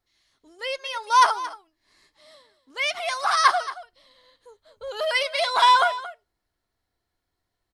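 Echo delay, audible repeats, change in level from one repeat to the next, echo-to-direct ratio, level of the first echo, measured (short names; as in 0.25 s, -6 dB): 0.226 s, 1, no steady repeat, -15.5 dB, -15.5 dB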